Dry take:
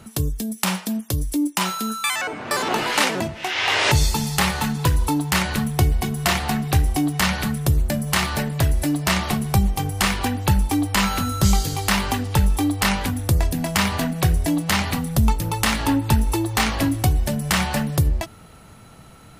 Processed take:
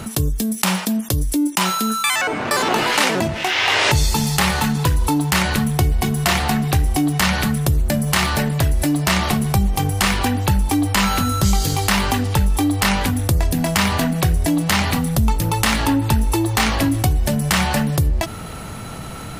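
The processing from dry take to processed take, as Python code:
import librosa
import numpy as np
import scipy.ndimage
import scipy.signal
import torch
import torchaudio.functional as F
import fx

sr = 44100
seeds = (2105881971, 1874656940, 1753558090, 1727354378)

p1 = np.sign(x) * np.maximum(np.abs(x) - 10.0 ** (-37.0 / 20.0), 0.0)
p2 = x + (p1 * librosa.db_to_amplitude(-7.0))
p3 = fx.env_flatten(p2, sr, amount_pct=50)
y = p3 * librosa.db_to_amplitude(-3.5)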